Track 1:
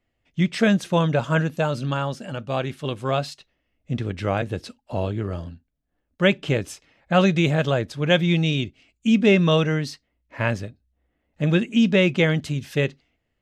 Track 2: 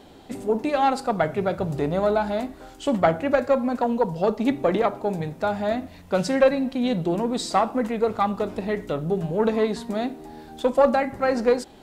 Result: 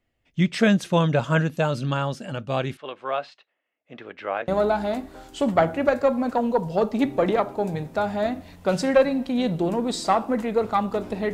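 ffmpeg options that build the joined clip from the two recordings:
ffmpeg -i cue0.wav -i cue1.wav -filter_complex "[0:a]asettb=1/sr,asplit=3[link_01][link_02][link_03];[link_01]atrim=end=2.774[link_04];[link_02]atrim=start=2.77:end=4.48,asetpts=PTS-STARTPTS,afade=type=in:duration=0.004:curve=qsin,afade=type=out:start_time=1.706:duration=0.004:curve=qsin,highpass=590,lowpass=2300[link_05];[link_03]atrim=start=4.476[link_06];[link_04][link_05]acrossfade=duration=0.004:curve1=hsin:curve2=qsin[link_07];[link_07][link_06]acrossfade=duration=0.004:curve1=qsin:curve2=hsin,apad=whole_dur=11.33,atrim=end=11.33,atrim=end=4.482[link_08];[1:a]atrim=start=1.938:end=8.79[link_09];[link_08][link_09]acrossfade=duration=0.004:curve1=hsin:curve2=hsin" out.wav

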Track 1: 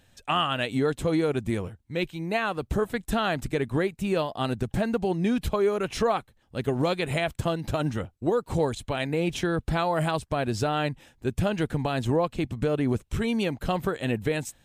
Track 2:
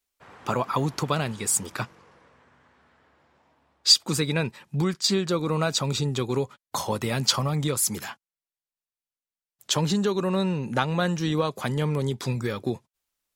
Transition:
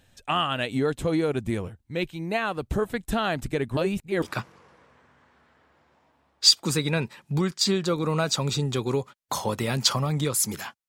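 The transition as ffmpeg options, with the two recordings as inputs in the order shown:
ffmpeg -i cue0.wav -i cue1.wav -filter_complex "[0:a]apad=whole_dur=10.88,atrim=end=10.88,asplit=2[link_01][link_02];[link_01]atrim=end=3.772[link_03];[link_02]atrim=start=3.768:end=4.222,asetpts=PTS-STARTPTS,areverse[link_04];[1:a]atrim=start=1.648:end=8.31[link_05];[link_03][link_04]acrossfade=duration=0.004:curve1=hsin:curve2=hsin[link_06];[link_06][link_05]acrossfade=duration=0.004:curve1=hsin:curve2=hsin" out.wav

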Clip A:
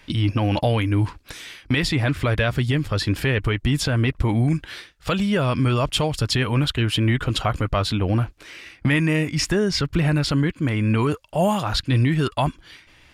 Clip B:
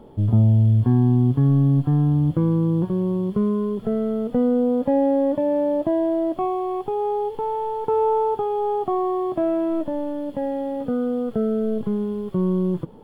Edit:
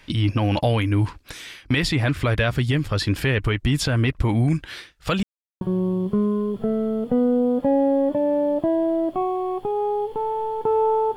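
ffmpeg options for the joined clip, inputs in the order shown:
ffmpeg -i cue0.wav -i cue1.wav -filter_complex "[0:a]apad=whole_dur=11.16,atrim=end=11.16,asplit=2[link_01][link_02];[link_01]atrim=end=5.23,asetpts=PTS-STARTPTS,afade=type=out:start_time=5.226:duration=0.004:curve=hsin[link_03];[link_02]atrim=start=5.23:end=5.61,asetpts=PTS-STARTPTS,volume=0[link_04];[1:a]atrim=start=2.84:end=8.39,asetpts=PTS-STARTPTS,afade=type=in:duration=0.004:curve=hsin[link_05];[link_03][link_04][link_05]concat=n=3:v=0:a=1" out.wav

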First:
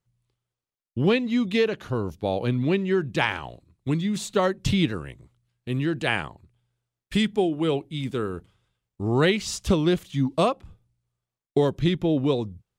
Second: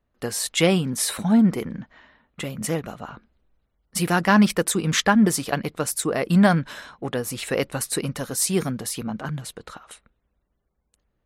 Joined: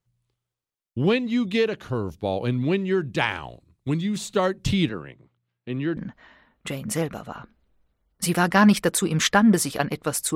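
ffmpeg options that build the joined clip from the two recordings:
ffmpeg -i cue0.wav -i cue1.wav -filter_complex "[0:a]asettb=1/sr,asplit=3[link_01][link_02][link_03];[link_01]atrim=end=4.894[link_04];[link_02]atrim=start=4.89:end=5.97,asetpts=PTS-STARTPTS,afade=type=in:duration=0.004:curve=qsin,afade=type=out:start_time=1.076:duration=0.004:curve=qsin,highpass=150,lowpass=3000[link_05];[link_03]atrim=start=5.966[link_06];[link_04][link_05]acrossfade=duration=0.004:curve1=hsin:curve2=qsin[link_07];[link_07][link_06]acrossfade=duration=0.004:curve1=qsin:curve2=hsin,apad=whole_dur=10.35,atrim=end=10.35,atrim=end=5.972[link_08];[1:a]atrim=start=1.698:end=6.08[link_09];[link_08][link_09]acrossfade=duration=0.004:curve1=hsin:curve2=hsin" out.wav

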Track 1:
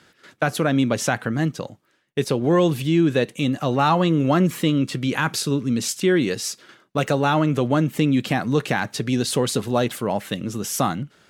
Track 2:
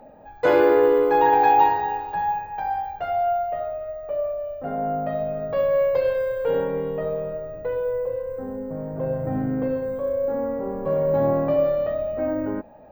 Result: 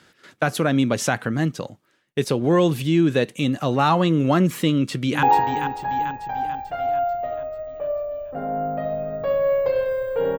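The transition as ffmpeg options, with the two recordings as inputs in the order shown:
ffmpeg -i cue0.wav -i cue1.wav -filter_complex "[0:a]apad=whole_dur=10.38,atrim=end=10.38,atrim=end=5.232[link_01];[1:a]atrim=start=1.518:end=6.67[link_02];[link_01][link_02]acrossfade=duration=0.004:curve1=hsin:curve2=hsin,asplit=2[link_03][link_04];[link_04]afade=type=in:start_time=4.68:duration=0.01,afade=type=out:start_time=5.23:duration=0.01,aecho=0:1:440|880|1320|1760|2200|2640|3080:0.398107|0.218959|0.120427|0.0662351|0.0364293|0.0200361|0.0110199[link_05];[link_03][link_05]amix=inputs=2:normalize=0" out.wav

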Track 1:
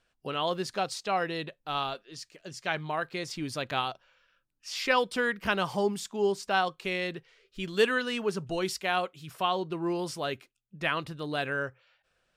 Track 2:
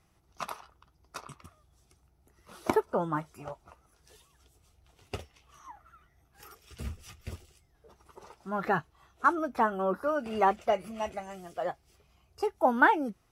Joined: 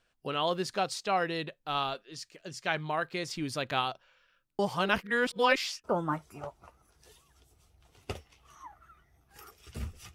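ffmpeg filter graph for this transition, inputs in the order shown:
ffmpeg -i cue0.wav -i cue1.wav -filter_complex "[0:a]apad=whole_dur=10.14,atrim=end=10.14,asplit=2[link_01][link_02];[link_01]atrim=end=4.592[link_03];[link_02]atrim=start=4.588:end=5.842,asetpts=PTS-STARTPTS,areverse[link_04];[1:a]atrim=start=2.878:end=7.18[link_05];[link_03][link_04]acrossfade=duration=0.004:curve1=hsin:curve2=hsin[link_06];[link_06][link_05]acrossfade=duration=0.004:curve1=hsin:curve2=hsin" out.wav

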